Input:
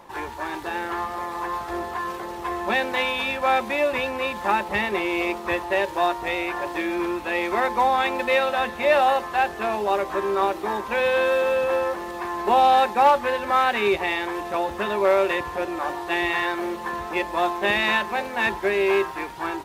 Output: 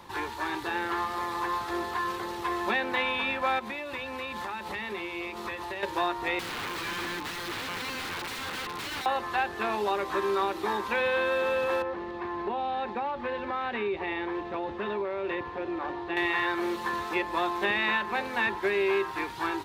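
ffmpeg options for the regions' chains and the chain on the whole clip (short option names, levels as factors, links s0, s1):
-filter_complex "[0:a]asettb=1/sr,asplit=3[s0][s1][s2];[s0]atrim=end=3.594[s3];[s1]atrim=start=3.59:end=5.83,asetpts=PTS-STARTPTS,afade=t=in:d=0.004:c=qsin,afade=t=out:st=2.236:d=0.004:c=qsin,acompressor=threshold=0.0355:ratio=10:attack=3.2:release=140:knee=1:detection=peak,bandreject=f=50:t=h:w=6,bandreject=f=100:t=h:w=6,bandreject=f=150:t=h:w=6,bandreject=f=200:t=h:w=6,bandreject=f=250:t=h:w=6,bandreject=f=300:t=h:w=6,bandreject=f=350:t=h:w=6[s4];[s2]atrim=start=5.826[s5];[s3][s4]acrossfade=d=0.004:c1=hsin:c2=qsin[s6];[s6][s5]acrossfade=d=0.004:c1=qsin:c2=hsin,asettb=1/sr,asplit=3[s7][s8][s9];[s7]atrim=end=6.394[s10];[s8]atrim=start=6.39:end=9.06,asetpts=PTS-STARTPTS,afade=t=in:d=0.004:c=qsin,afade=t=out:st=2.666:d=0.004:c=qsin,aecho=1:1:6.6:0.88,atrim=end_sample=117747,acompressor=threshold=0.0501:ratio=3:attack=3.2:release=140:knee=1:detection=peak,aeval=exprs='(mod(20*val(0)+1,2)-1)/20':c=same[s11];[s9]atrim=start=9.056[s12];[s10][s11]acrossfade=d=0.004:c1=hsin:c2=qsin[s13];[s13][s12]acrossfade=d=0.004:c1=qsin:c2=hsin,asettb=1/sr,asplit=3[s14][s15][s16];[s14]atrim=end=11.824[s17];[s15]atrim=start=11.82:end=16.17,asetpts=PTS-STARTPTS,afade=t=in:d=0.004:c=qsin,afade=t=out:st=4.346:d=0.004:c=qsin,lowpass=1900,equalizer=f=1300:t=o:w=1.4:g=-6,acompressor=threshold=0.0631:ratio=6:attack=3.2:release=140:knee=1:detection=peak[s18];[s16]atrim=start=16.166[s19];[s17][s18]acrossfade=d=0.004:c1=hsin:c2=qsin[s20];[s20][s19]acrossfade=d=0.004:c1=qsin:c2=hsin,equalizer=f=100:t=o:w=0.67:g=9,equalizer=f=630:t=o:w=0.67:g=-8,equalizer=f=4000:t=o:w=0.67:g=6,acrossover=split=220|2500[s21][s22][s23];[s21]acompressor=threshold=0.00282:ratio=4[s24];[s22]acompressor=threshold=0.0631:ratio=4[s25];[s23]acompressor=threshold=0.00631:ratio=4[s26];[s24][s25][s26]amix=inputs=3:normalize=0"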